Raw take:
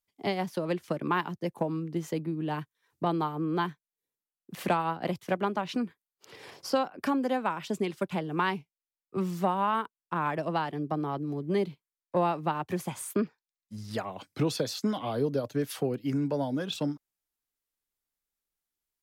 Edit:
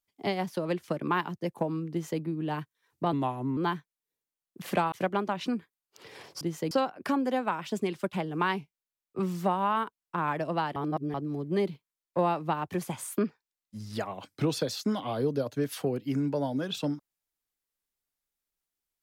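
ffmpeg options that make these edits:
-filter_complex "[0:a]asplit=8[s0][s1][s2][s3][s4][s5][s6][s7];[s0]atrim=end=3.134[s8];[s1]atrim=start=3.13:end=3.5,asetpts=PTS-STARTPTS,asetrate=37044,aresample=44100[s9];[s2]atrim=start=3.496:end=4.852[s10];[s3]atrim=start=5.198:end=6.692[s11];[s4]atrim=start=1.908:end=2.212[s12];[s5]atrim=start=6.688:end=10.742[s13];[s6]atrim=start=10.738:end=11.122,asetpts=PTS-STARTPTS,areverse[s14];[s7]atrim=start=11.118[s15];[s8][s9]acrossfade=d=0.004:c1=hsin:c2=hsin[s16];[s16][s10]acrossfade=d=0.004:c1=hsin:c2=hsin[s17];[s17][s11]acrossfade=d=0.004:c1=hsin:c2=hsin[s18];[s18][s12]acrossfade=d=0.004:c1=hsin:c2=hsin[s19];[s19][s13]acrossfade=d=0.004:c1=hsin:c2=hsin[s20];[s20][s14]acrossfade=d=0.004:c1=hsin:c2=hsin[s21];[s21][s15]acrossfade=d=0.004:c1=hsin:c2=hsin"

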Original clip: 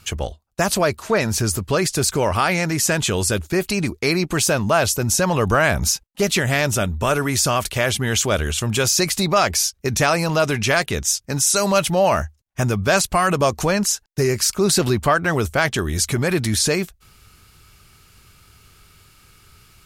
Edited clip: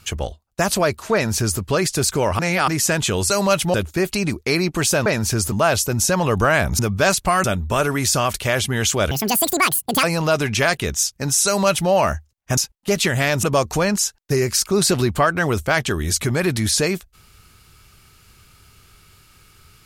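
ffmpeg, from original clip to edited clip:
-filter_complex "[0:a]asplit=13[s0][s1][s2][s3][s4][s5][s6][s7][s8][s9][s10][s11][s12];[s0]atrim=end=2.392[s13];[s1]atrim=start=2.388:end=2.682,asetpts=PTS-STARTPTS,areverse[s14];[s2]atrim=start=2.678:end=3.302[s15];[s3]atrim=start=11.548:end=11.992[s16];[s4]atrim=start=3.298:end=4.622[s17];[s5]atrim=start=1.138:end=1.602[s18];[s6]atrim=start=4.618:end=5.892[s19];[s7]atrim=start=12.658:end=13.312[s20];[s8]atrim=start=6.748:end=8.424[s21];[s9]atrim=start=8.42:end=10.12,asetpts=PTS-STARTPTS,asetrate=81144,aresample=44100[s22];[s10]atrim=start=10.116:end=12.662[s23];[s11]atrim=start=5.888:end=6.752[s24];[s12]atrim=start=13.308[s25];[s13][s14]acrossfade=d=0.004:c1=hsin:c2=hsin[s26];[s26][s15]acrossfade=d=0.004:c1=hsin:c2=hsin[s27];[s27][s16]acrossfade=d=0.004:c1=hsin:c2=hsin[s28];[s28][s17]acrossfade=d=0.004:c1=hsin:c2=hsin[s29];[s29][s18]acrossfade=d=0.004:c1=hsin:c2=hsin[s30];[s30][s19]acrossfade=d=0.004:c1=hsin:c2=hsin[s31];[s31][s20]acrossfade=d=0.004:c1=hsin:c2=hsin[s32];[s32][s21]acrossfade=d=0.004:c1=hsin:c2=hsin[s33];[s33][s22]acrossfade=d=0.004:c1=hsin:c2=hsin[s34];[s34][s23]acrossfade=d=0.004:c1=hsin:c2=hsin[s35];[s35][s24]acrossfade=d=0.004:c1=hsin:c2=hsin[s36];[s36][s25]acrossfade=d=0.004:c1=hsin:c2=hsin"

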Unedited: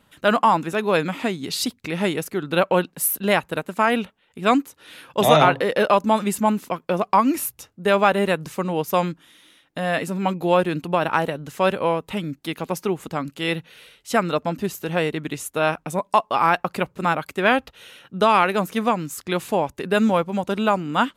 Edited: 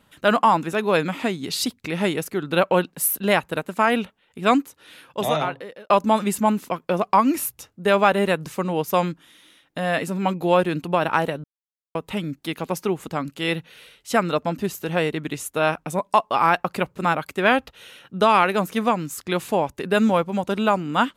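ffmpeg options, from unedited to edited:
-filter_complex "[0:a]asplit=4[s0][s1][s2][s3];[s0]atrim=end=5.9,asetpts=PTS-STARTPTS,afade=t=out:st=4.53:d=1.37[s4];[s1]atrim=start=5.9:end=11.44,asetpts=PTS-STARTPTS,afade=t=in:d=0.004:c=hsin,afade=t=out:st=5.536:d=0.004:c=hsin[s5];[s2]atrim=start=11.44:end=11.95,asetpts=PTS-STARTPTS,volume=0[s6];[s3]atrim=start=11.95,asetpts=PTS-STARTPTS,afade=t=in:d=0.004:c=hsin[s7];[s4][s5][s6][s7]concat=n=4:v=0:a=1"

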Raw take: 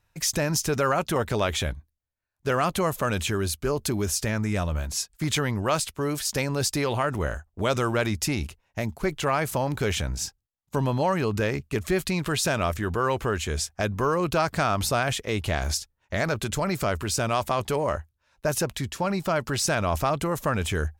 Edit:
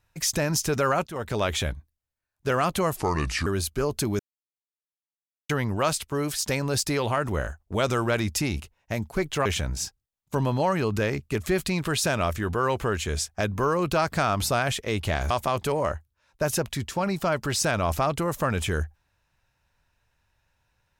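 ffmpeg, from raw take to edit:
-filter_complex "[0:a]asplit=8[s0][s1][s2][s3][s4][s5][s6][s7];[s0]atrim=end=1.07,asetpts=PTS-STARTPTS,afade=t=out:st=1.066:d=0.004:c=hsin:silence=0.149624[s8];[s1]atrim=start=1.07:end=2.974,asetpts=PTS-STARTPTS,afade=t=in:d=0.5:c=qsin:silence=0.149624[s9];[s2]atrim=start=2.97:end=3.33,asetpts=PTS-STARTPTS,asetrate=32193,aresample=44100[s10];[s3]atrim=start=3.326:end=4.06,asetpts=PTS-STARTPTS,afade=t=out:st=0.73:d=0.004:c=hsin[s11];[s4]atrim=start=4.06:end=5.36,asetpts=PTS-STARTPTS,volume=0[s12];[s5]atrim=start=5.36:end=9.322,asetpts=PTS-STARTPTS,afade=t=in:d=0.004:c=hsin[s13];[s6]atrim=start=9.858:end=15.712[s14];[s7]atrim=start=17.338[s15];[s8][s9]concat=n=2:v=0:a=1[s16];[s16][s10]acrossfade=d=0.004:c1=hsin:c2=hsin[s17];[s11][s12][s13]concat=n=3:v=0:a=1[s18];[s17][s18]acrossfade=d=0.004:c1=hsin:c2=hsin[s19];[s19][s14]acrossfade=d=0.004:c1=hsin:c2=hsin[s20];[s20][s15]acrossfade=d=0.004:c1=hsin:c2=hsin"

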